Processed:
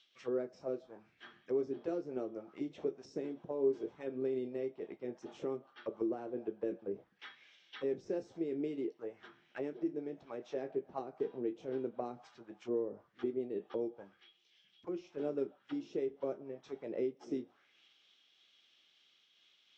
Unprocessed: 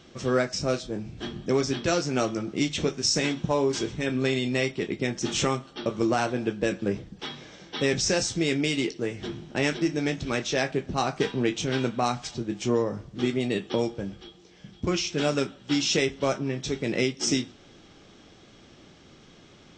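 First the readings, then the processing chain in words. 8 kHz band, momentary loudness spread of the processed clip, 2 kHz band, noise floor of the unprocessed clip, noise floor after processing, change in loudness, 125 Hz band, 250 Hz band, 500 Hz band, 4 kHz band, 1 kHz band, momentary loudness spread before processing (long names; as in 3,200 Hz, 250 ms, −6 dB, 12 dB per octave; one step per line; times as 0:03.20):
below −35 dB, 12 LU, −25.0 dB, −53 dBFS, −71 dBFS, −12.5 dB, −24.0 dB, −13.0 dB, −9.5 dB, −29.0 dB, −18.5 dB, 9 LU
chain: envelope filter 390–3,600 Hz, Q 2.5, down, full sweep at −22.5 dBFS
amplitude modulation by smooth noise, depth 60%
level −4 dB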